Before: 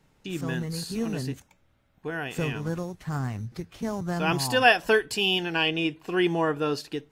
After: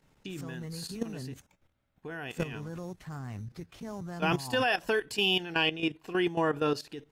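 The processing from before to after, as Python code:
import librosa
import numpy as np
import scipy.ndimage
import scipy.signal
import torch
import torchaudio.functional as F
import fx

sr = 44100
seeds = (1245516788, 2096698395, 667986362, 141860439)

y = fx.level_steps(x, sr, step_db=13)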